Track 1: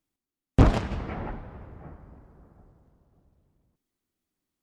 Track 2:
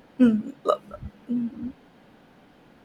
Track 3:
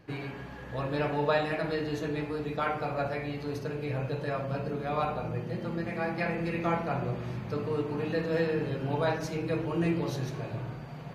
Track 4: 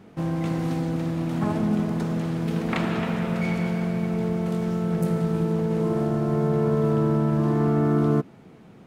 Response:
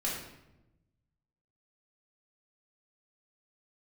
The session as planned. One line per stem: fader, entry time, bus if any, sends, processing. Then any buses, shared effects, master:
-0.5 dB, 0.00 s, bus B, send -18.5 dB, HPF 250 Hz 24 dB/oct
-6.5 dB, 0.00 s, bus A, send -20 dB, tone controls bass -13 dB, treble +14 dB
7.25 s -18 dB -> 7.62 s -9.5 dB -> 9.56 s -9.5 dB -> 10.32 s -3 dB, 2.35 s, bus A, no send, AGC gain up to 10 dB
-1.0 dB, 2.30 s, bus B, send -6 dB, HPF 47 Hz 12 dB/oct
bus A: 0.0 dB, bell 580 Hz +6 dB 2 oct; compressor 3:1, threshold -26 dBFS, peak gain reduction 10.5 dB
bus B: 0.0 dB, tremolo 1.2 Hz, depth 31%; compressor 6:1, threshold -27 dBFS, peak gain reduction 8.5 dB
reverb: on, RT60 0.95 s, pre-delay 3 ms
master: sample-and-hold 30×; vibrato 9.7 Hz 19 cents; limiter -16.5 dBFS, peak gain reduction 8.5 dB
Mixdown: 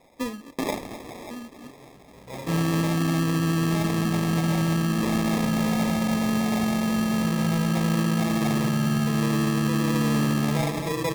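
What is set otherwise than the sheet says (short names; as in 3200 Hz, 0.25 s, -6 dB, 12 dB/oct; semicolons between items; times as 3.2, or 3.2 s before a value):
stem 2: send off; stem 3: entry 2.35 s -> 1.55 s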